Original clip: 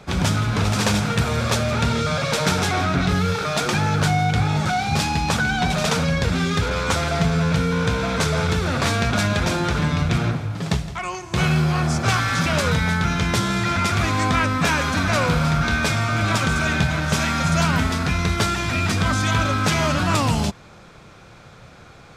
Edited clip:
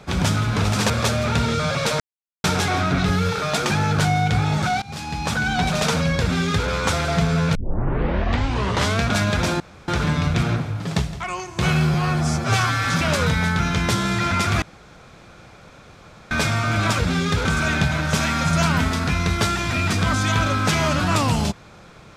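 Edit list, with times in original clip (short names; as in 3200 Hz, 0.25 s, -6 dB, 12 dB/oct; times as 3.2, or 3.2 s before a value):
0.9–1.37 cut
2.47 insert silence 0.44 s
4.85–5.55 fade in linear, from -20 dB
6.24–6.7 copy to 16.44
7.58 tape start 1.46 s
9.63 insert room tone 0.28 s
11.69–12.29 stretch 1.5×
14.07–15.76 room tone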